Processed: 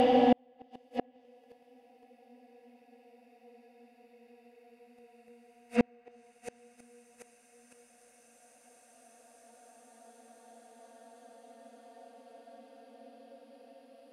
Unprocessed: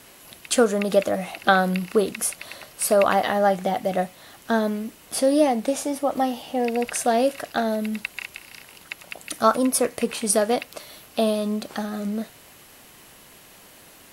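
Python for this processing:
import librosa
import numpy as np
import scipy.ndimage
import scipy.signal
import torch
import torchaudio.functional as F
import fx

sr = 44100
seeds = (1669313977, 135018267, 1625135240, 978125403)

y = fx.paulstretch(x, sr, seeds[0], factor=18.0, window_s=0.5, from_s=6.48)
y = fx.gate_flip(y, sr, shuts_db=-18.0, range_db=-41)
y = fx.env_lowpass_down(y, sr, base_hz=2600.0, full_db=-39.5)
y = F.gain(torch.from_numpy(y), 6.0).numpy()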